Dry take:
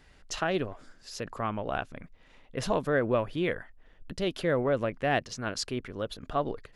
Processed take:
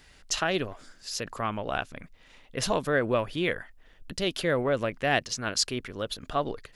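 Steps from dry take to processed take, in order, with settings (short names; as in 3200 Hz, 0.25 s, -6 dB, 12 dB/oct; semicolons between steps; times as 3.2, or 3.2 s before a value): high shelf 2200 Hz +9.5 dB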